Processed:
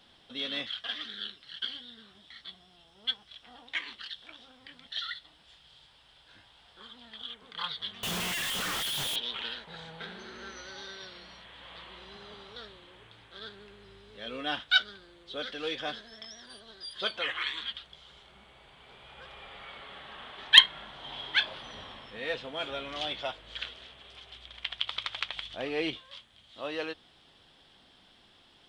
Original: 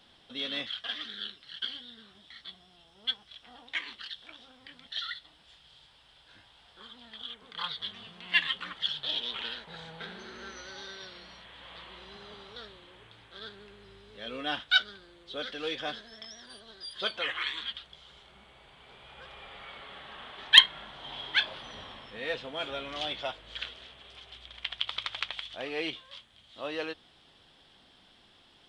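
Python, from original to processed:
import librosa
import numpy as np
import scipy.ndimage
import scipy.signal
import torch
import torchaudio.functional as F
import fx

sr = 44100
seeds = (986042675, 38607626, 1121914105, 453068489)

y = fx.clip_1bit(x, sr, at=(8.03, 9.16))
y = fx.low_shelf(y, sr, hz=440.0, db=6.5, at=(25.35, 25.98))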